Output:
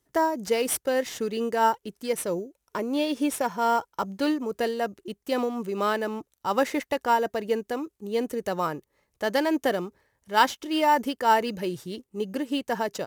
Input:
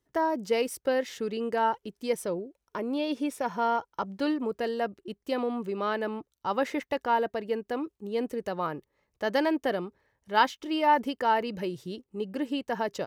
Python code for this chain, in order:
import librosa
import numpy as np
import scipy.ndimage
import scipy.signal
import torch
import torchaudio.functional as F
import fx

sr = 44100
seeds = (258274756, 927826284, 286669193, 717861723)

p1 = fx.peak_eq(x, sr, hz=12000.0, db=10.5, octaves=2.0)
p2 = fx.sample_hold(p1, sr, seeds[0], rate_hz=6500.0, jitter_pct=0)
p3 = p1 + (p2 * librosa.db_to_amplitude(-11.5))
p4 = fx.am_noise(p3, sr, seeds[1], hz=5.7, depth_pct=55)
y = p4 * librosa.db_to_amplitude(3.0)